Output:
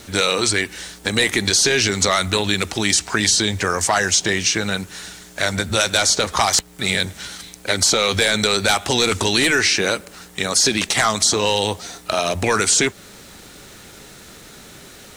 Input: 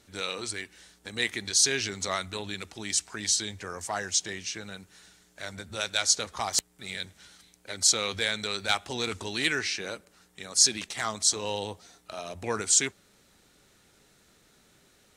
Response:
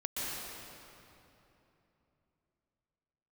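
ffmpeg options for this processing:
-filter_complex "[0:a]apsyclip=15,acrossover=split=1300|6400[s0][s1][s2];[s0]acompressor=threshold=0.178:ratio=4[s3];[s1]acompressor=threshold=0.178:ratio=4[s4];[s2]acompressor=threshold=0.1:ratio=4[s5];[s3][s4][s5]amix=inputs=3:normalize=0,acrusher=bits=7:mix=0:aa=0.000001,volume=0.668"

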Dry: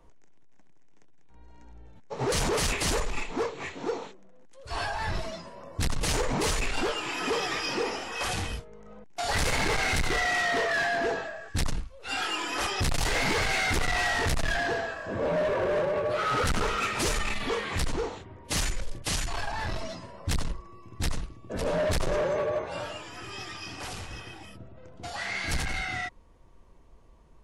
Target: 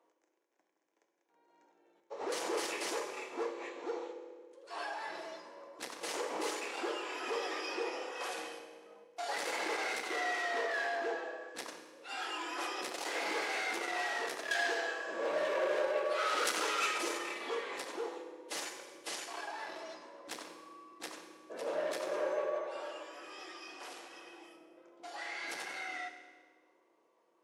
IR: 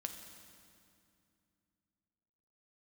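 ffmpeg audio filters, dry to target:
-filter_complex "[0:a]highpass=f=350:w=0.5412,highpass=f=350:w=1.3066,asetnsamples=n=441:p=0,asendcmd='14.51 highshelf g 7.5;16.98 highshelf g -4.5',highshelf=f=2200:g=-5[s0];[1:a]atrim=start_sample=2205,asetrate=74970,aresample=44100[s1];[s0][s1]afir=irnorm=-1:irlink=0"

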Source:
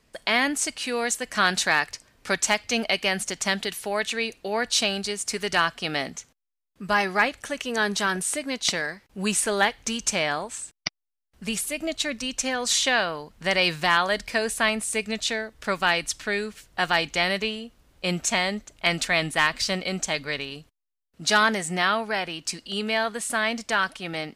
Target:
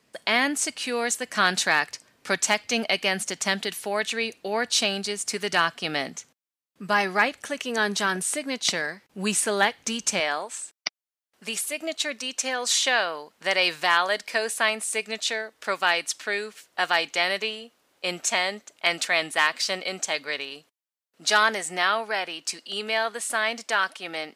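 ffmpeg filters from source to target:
-af "asetnsamples=n=441:p=0,asendcmd='10.2 highpass f 380',highpass=150"

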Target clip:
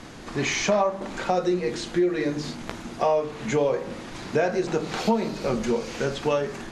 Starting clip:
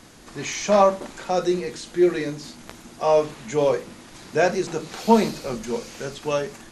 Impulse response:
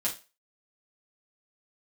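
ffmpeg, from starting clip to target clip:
-af "aemphasis=mode=reproduction:type=50fm,bandreject=f=49.87:t=h:w=4,bandreject=f=99.74:t=h:w=4,bandreject=f=149.61:t=h:w=4,bandreject=f=199.48:t=h:w=4,bandreject=f=249.35:t=h:w=4,bandreject=f=299.22:t=h:w=4,bandreject=f=349.09:t=h:w=4,bandreject=f=398.96:t=h:w=4,bandreject=f=448.83:t=h:w=4,bandreject=f=498.7:t=h:w=4,bandreject=f=548.57:t=h:w=4,bandreject=f=598.44:t=h:w=4,bandreject=f=648.31:t=h:w=4,bandreject=f=698.18:t=h:w=4,bandreject=f=748.05:t=h:w=4,bandreject=f=797.92:t=h:w=4,bandreject=f=847.79:t=h:w=4,bandreject=f=897.66:t=h:w=4,bandreject=f=947.53:t=h:w=4,bandreject=f=997.4:t=h:w=4,bandreject=f=1047.27:t=h:w=4,bandreject=f=1097.14:t=h:w=4,bandreject=f=1147.01:t=h:w=4,bandreject=f=1196.88:t=h:w=4,bandreject=f=1246.75:t=h:w=4,bandreject=f=1296.62:t=h:w=4,bandreject=f=1346.49:t=h:w=4,bandreject=f=1396.36:t=h:w=4,bandreject=f=1446.23:t=h:w=4,bandreject=f=1496.1:t=h:w=4,bandreject=f=1545.97:t=h:w=4,bandreject=f=1595.84:t=h:w=4,bandreject=f=1645.71:t=h:w=4,bandreject=f=1695.58:t=h:w=4,bandreject=f=1745.45:t=h:w=4,bandreject=f=1795.32:t=h:w=4,bandreject=f=1845.19:t=h:w=4,acompressor=threshold=0.0398:ratio=5,volume=2.37"

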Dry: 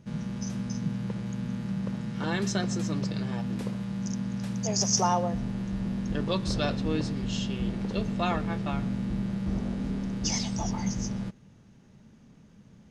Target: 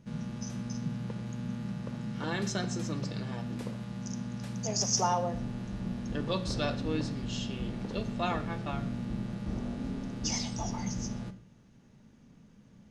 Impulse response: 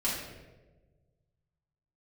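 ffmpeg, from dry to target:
-filter_complex "[0:a]asplit=2[s0][s1];[1:a]atrim=start_sample=2205,atrim=end_sample=6174[s2];[s1][s2]afir=irnorm=-1:irlink=0,volume=0.178[s3];[s0][s3]amix=inputs=2:normalize=0,volume=0.596"

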